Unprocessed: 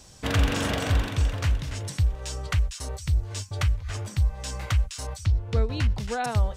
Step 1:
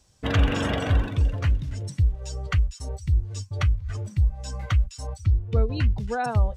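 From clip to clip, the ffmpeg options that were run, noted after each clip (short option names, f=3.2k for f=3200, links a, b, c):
-af "afftdn=nr=15:nf=-33,volume=2dB"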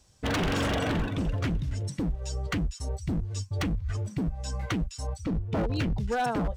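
-af "aeval=exprs='0.0841*(abs(mod(val(0)/0.0841+3,4)-2)-1)':c=same"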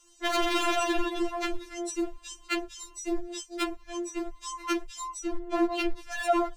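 -af "afftfilt=real='re*4*eq(mod(b,16),0)':imag='im*4*eq(mod(b,16),0)':win_size=2048:overlap=0.75,volume=6.5dB"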